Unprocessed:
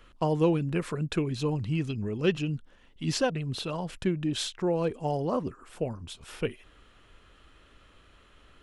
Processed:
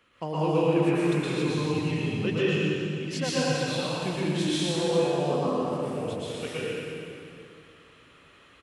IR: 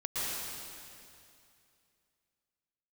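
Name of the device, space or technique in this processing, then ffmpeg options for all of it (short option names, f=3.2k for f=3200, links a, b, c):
PA in a hall: -filter_complex "[0:a]highpass=120,equalizer=f=2.3k:t=o:w=0.59:g=4.5,aecho=1:1:117:0.422[a];[1:a]atrim=start_sample=2205[b];[a][b]afir=irnorm=-1:irlink=0,volume=-3.5dB"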